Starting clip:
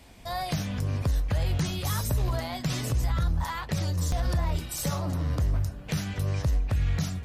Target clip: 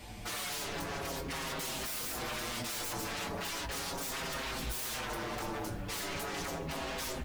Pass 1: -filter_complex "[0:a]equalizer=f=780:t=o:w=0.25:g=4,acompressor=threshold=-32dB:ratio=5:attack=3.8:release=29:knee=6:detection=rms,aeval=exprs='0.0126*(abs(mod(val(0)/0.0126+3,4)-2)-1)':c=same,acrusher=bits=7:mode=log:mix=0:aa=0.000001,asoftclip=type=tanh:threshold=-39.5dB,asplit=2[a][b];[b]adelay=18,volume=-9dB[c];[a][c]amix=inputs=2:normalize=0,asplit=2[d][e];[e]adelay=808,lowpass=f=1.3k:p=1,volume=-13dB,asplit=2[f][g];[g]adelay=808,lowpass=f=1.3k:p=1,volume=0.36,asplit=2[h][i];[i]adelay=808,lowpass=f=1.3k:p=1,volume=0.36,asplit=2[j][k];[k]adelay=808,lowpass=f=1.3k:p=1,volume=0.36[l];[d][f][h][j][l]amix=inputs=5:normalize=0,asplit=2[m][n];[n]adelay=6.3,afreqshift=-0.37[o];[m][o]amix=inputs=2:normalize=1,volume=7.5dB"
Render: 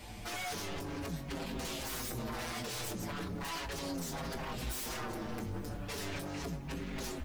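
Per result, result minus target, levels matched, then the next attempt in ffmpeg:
compressor: peak gain reduction +10 dB; soft clip: distortion +13 dB
-filter_complex "[0:a]equalizer=f=780:t=o:w=0.25:g=4,aeval=exprs='0.0126*(abs(mod(val(0)/0.0126+3,4)-2)-1)':c=same,acrusher=bits=7:mode=log:mix=0:aa=0.000001,asoftclip=type=tanh:threshold=-39.5dB,asplit=2[a][b];[b]adelay=18,volume=-9dB[c];[a][c]amix=inputs=2:normalize=0,asplit=2[d][e];[e]adelay=808,lowpass=f=1.3k:p=1,volume=-13dB,asplit=2[f][g];[g]adelay=808,lowpass=f=1.3k:p=1,volume=0.36,asplit=2[h][i];[i]adelay=808,lowpass=f=1.3k:p=1,volume=0.36,asplit=2[j][k];[k]adelay=808,lowpass=f=1.3k:p=1,volume=0.36[l];[d][f][h][j][l]amix=inputs=5:normalize=0,asplit=2[m][n];[n]adelay=6.3,afreqshift=-0.37[o];[m][o]amix=inputs=2:normalize=1,volume=7.5dB"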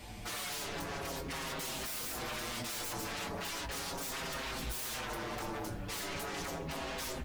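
soft clip: distortion +13 dB
-filter_complex "[0:a]equalizer=f=780:t=o:w=0.25:g=4,aeval=exprs='0.0126*(abs(mod(val(0)/0.0126+3,4)-2)-1)':c=same,acrusher=bits=7:mode=log:mix=0:aa=0.000001,asoftclip=type=tanh:threshold=-32dB,asplit=2[a][b];[b]adelay=18,volume=-9dB[c];[a][c]amix=inputs=2:normalize=0,asplit=2[d][e];[e]adelay=808,lowpass=f=1.3k:p=1,volume=-13dB,asplit=2[f][g];[g]adelay=808,lowpass=f=1.3k:p=1,volume=0.36,asplit=2[h][i];[i]adelay=808,lowpass=f=1.3k:p=1,volume=0.36,asplit=2[j][k];[k]adelay=808,lowpass=f=1.3k:p=1,volume=0.36[l];[d][f][h][j][l]amix=inputs=5:normalize=0,asplit=2[m][n];[n]adelay=6.3,afreqshift=-0.37[o];[m][o]amix=inputs=2:normalize=1,volume=7.5dB"

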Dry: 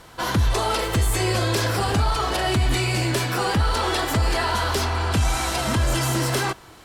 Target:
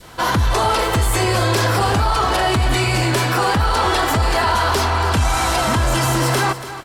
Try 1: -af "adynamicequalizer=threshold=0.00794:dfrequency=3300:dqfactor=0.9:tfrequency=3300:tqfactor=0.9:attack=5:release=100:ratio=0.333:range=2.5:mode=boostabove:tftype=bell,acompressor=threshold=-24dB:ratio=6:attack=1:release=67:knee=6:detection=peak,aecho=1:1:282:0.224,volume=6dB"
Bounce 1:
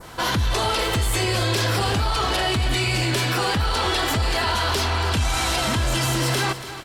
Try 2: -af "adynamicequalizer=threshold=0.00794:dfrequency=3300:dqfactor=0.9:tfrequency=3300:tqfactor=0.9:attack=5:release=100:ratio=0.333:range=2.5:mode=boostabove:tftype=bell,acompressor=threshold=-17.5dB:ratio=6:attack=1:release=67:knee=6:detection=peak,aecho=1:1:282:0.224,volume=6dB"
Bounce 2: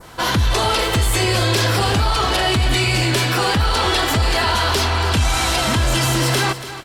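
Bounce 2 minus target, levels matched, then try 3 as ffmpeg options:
4000 Hz band +4.0 dB
-af "adynamicequalizer=threshold=0.00794:dfrequency=1000:dqfactor=0.9:tfrequency=1000:tqfactor=0.9:attack=5:release=100:ratio=0.333:range=2.5:mode=boostabove:tftype=bell,acompressor=threshold=-17.5dB:ratio=6:attack=1:release=67:knee=6:detection=peak,aecho=1:1:282:0.224,volume=6dB"

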